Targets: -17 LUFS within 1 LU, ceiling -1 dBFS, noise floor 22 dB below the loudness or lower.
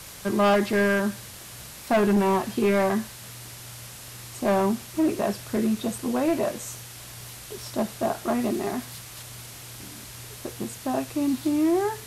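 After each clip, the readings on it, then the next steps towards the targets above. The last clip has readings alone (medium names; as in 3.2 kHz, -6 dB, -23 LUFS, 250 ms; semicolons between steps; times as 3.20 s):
clipped samples 1.7%; clipping level -16.5 dBFS; noise floor -42 dBFS; noise floor target -47 dBFS; loudness -25.0 LUFS; peak level -16.5 dBFS; loudness target -17.0 LUFS
-> clip repair -16.5 dBFS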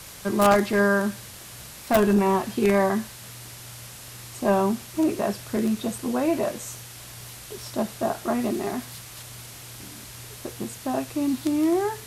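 clipped samples 0.0%; noise floor -42 dBFS; noise floor target -47 dBFS
-> noise reduction 6 dB, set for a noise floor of -42 dBFS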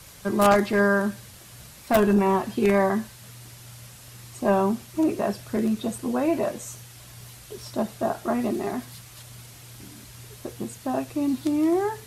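noise floor -47 dBFS; loudness -24.5 LUFS; peak level -7.5 dBFS; loudness target -17.0 LUFS
-> trim +7.5 dB; peak limiter -1 dBFS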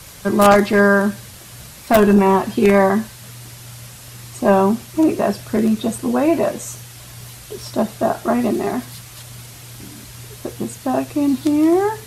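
loudness -17.0 LUFS; peak level -1.0 dBFS; noise floor -39 dBFS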